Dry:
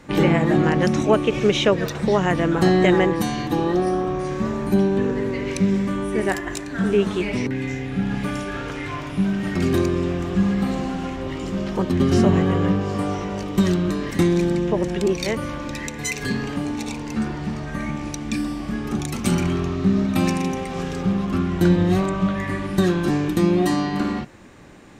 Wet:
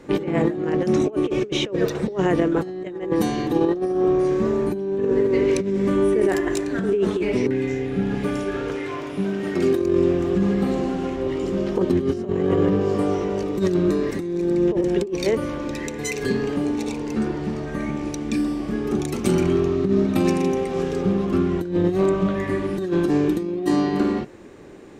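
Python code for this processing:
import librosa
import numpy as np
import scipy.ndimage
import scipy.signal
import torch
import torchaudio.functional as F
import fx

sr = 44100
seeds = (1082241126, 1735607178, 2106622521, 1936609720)

y = fx.over_compress(x, sr, threshold_db=-23.0, ratio=-1.0, at=(5.25, 7.09), fade=0.02)
y = fx.low_shelf(y, sr, hz=140.0, db=-12.0, at=(8.76, 9.82))
y = fx.notch(y, sr, hz=3100.0, q=12.0, at=(13.43, 14.68))
y = fx.peak_eq(y, sr, hz=400.0, db=12.0, octaves=0.93)
y = fx.over_compress(y, sr, threshold_db=-14.0, ratio=-0.5)
y = y * 10.0 ** (-5.0 / 20.0)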